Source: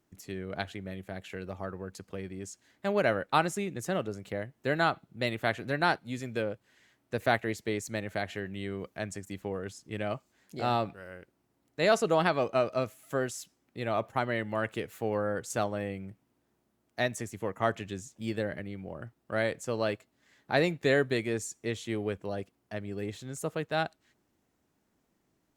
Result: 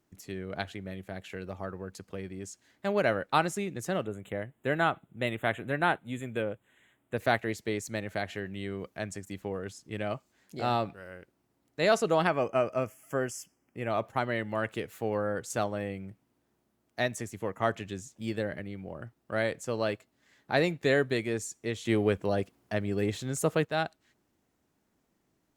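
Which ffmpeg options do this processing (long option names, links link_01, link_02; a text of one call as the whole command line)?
ffmpeg -i in.wav -filter_complex "[0:a]asettb=1/sr,asplit=3[link_01][link_02][link_03];[link_01]atrim=end=4.054[link_04];[link_02]atrim=start=4.05:end=7.17,asetpts=PTS-STARTPTS,afade=type=in:duration=0.004:curve=qsin,afade=type=out:start_time=3.116:duration=0.004:curve=qsin,asuperstop=centerf=5100:order=8:qfactor=1.6[link_05];[link_03]atrim=start=7.166[link_06];[link_04][link_05]acrossfade=duration=0.004:curve1=hsin:curve2=qsin[link_07];[link_07][link_06]acrossfade=duration=0.004:curve1=qsin:curve2=hsin,asettb=1/sr,asplit=3[link_08][link_09][link_10];[link_08]atrim=end=12.274[link_11];[link_09]atrim=start=12.27:end=13.9,asetpts=PTS-STARTPTS,afade=type=in:duration=0.004:curve=qsin,afade=type=out:start_time=1.626:duration=0.004:curve=qsin,asuperstop=centerf=3900:order=4:qfactor=2.2[link_12];[link_10]atrim=start=13.896[link_13];[link_11][link_12]acrossfade=duration=0.004:curve1=hsin:curve2=qsin[link_14];[link_14][link_13]acrossfade=duration=0.004:curve1=qsin:curve2=hsin,asettb=1/sr,asplit=3[link_15][link_16][link_17];[link_15]atrim=end=21.854[link_18];[link_16]atrim=start=21.85:end=23.65,asetpts=PTS-STARTPTS,afade=type=in:duration=0.004:curve=qsin,afade=type=out:start_time=1.796:duration=0.004:curve=qsin,acontrast=72[link_19];[link_17]atrim=start=23.646[link_20];[link_18][link_19]acrossfade=duration=0.004:curve1=hsin:curve2=qsin[link_21];[link_21][link_20]acrossfade=duration=0.004:curve1=qsin:curve2=hsin" out.wav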